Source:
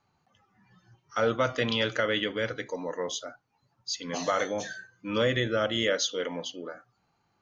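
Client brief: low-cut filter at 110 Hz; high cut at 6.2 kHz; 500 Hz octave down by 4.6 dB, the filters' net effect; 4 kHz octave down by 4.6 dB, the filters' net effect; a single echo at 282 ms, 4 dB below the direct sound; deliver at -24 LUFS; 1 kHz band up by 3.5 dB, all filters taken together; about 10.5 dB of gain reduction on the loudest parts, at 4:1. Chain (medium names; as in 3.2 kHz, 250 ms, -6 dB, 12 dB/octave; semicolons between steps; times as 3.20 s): high-pass 110 Hz; low-pass 6.2 kHz; peaking EQ 500 Hz -7 dB; peaking EQ 1 kHz +7 dB; peaking EQ 4 kHz -6 dB; compression 4:1, threshold -34 dBFS; delay 282 ms -4 dB; trim +13 dB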